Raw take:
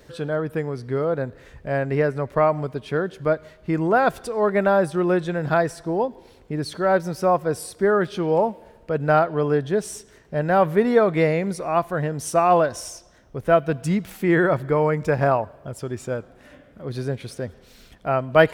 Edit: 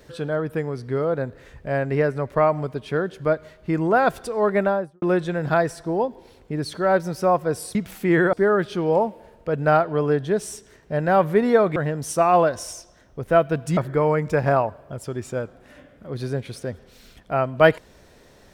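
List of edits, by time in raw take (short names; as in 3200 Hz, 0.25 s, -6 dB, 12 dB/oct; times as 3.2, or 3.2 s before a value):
4.55–5.02 studio fade out
11.18–11.93 cut
13.94–14.52 move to 7.75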